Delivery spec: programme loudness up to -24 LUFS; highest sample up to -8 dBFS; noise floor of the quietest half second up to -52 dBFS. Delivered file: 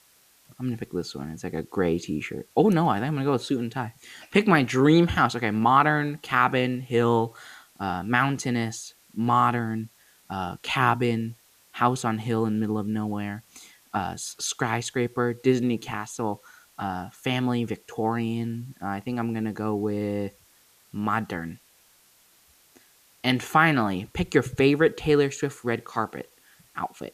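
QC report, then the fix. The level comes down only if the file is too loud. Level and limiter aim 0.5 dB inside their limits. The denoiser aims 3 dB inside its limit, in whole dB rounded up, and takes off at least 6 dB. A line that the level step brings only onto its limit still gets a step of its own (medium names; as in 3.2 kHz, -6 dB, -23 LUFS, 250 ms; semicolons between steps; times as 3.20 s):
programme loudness -25.5 LUFS: pass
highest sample -6.0 dBFS: fail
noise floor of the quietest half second -59 dBFS: pass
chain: peak limiter -8.5 dBFS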